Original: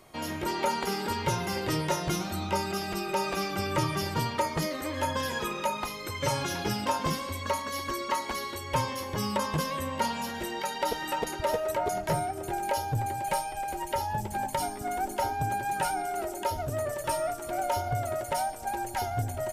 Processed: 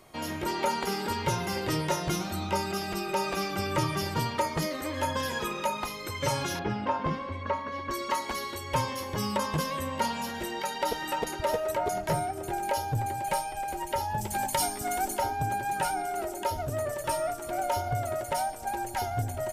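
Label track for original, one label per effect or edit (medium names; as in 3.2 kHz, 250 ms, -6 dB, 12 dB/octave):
6.590000	7.910000	low-pass 2.1 kHz
14.210000	15.180000	treble shelf 2.3 kHz +9 dB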